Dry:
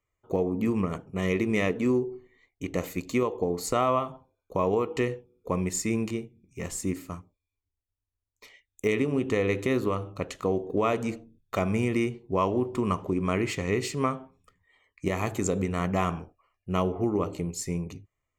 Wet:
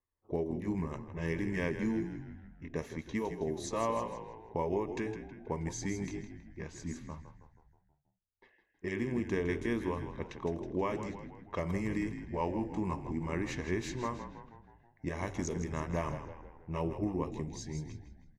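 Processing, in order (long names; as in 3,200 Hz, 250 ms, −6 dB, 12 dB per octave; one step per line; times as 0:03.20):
pitch shift by two crossfaded delay taps −2 semitones
echo with shifted repeats 160 ms, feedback 56%, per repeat −45 Hz, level −10 dB
low-pass that shuts in the quiet parts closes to 1,500 Hz, open at −23.5 dBFS
level −7 dB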